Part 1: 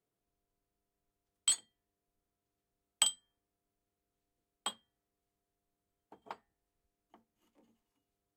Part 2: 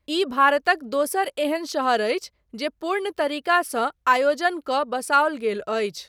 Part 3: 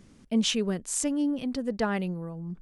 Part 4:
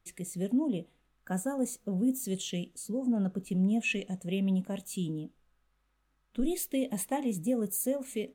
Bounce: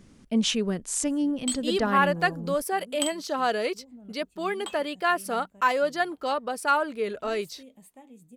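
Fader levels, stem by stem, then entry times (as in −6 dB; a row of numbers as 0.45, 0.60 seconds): −0.5, −4.5, +1.0, −19.0 decibels; 0.00, 1.55, 0.00, 0.85 seconds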